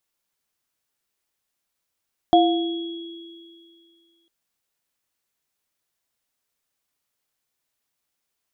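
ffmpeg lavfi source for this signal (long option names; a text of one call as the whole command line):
ffmpeg -f lavfi -i "aevalsrc='0.188*pow(10,-3*t/2.2)*sin(2*PI*335*t)+0.316*pow(10,-3*t/0.69)*sin(2*PI*707*t)+0.0531*pow(10,-3*t/2.87)*sin(2*PI*3330*t)':duration=1.95:sample_rate=44100" out.wav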